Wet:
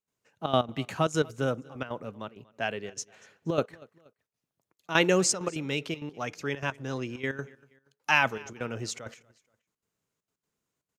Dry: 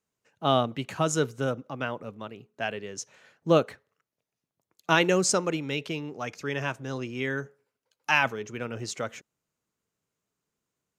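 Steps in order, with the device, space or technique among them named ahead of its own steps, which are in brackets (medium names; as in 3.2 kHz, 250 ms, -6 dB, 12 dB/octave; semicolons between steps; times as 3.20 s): trance gate with a delay (trance gate ".xxxxx.x" 197 bpm -12 dB; feedback delay 238 ms, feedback 38%, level -23.5 dB)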